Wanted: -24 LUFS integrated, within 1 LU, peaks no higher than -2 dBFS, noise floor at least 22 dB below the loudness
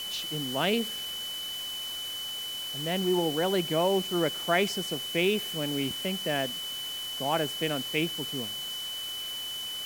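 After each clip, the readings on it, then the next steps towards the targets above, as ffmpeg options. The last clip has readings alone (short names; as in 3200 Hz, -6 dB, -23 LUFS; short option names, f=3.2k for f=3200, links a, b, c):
steady tone 3000 Hz; tone level -34 dBFS; noise floor -36 dBFS; noise floor target -52 dBFS; loudness -29.5 LUFS; peak -11.0 dBFS; loudness target -24.0 LUFS
-> -af "bandreject=f=3k:w=30"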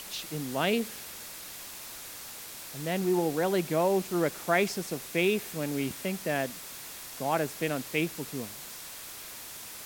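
steady tone none; noise floor -44 dBFS; noise floor target -54 dBFS
-> -af "afftdn=nr=10:nf=-44"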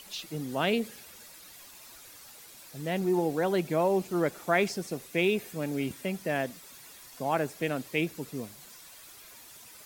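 noise floor -51 dBFS; noise floor target -53 dBFS
-> -af "afftdn=nr=6:nf=-51"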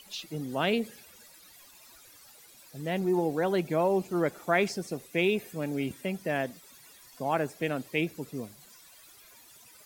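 noise floor -55 dBFS; loudness -30.5 LUFS; peak -11.5 dBFS; loudness target -24.0 LUFS
-> -af "volume=6.5dB"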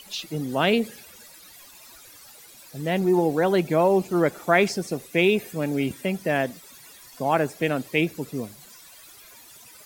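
loudness -24.0 LUFS; peak -5.0 dBFS; noise floor -49 dBFS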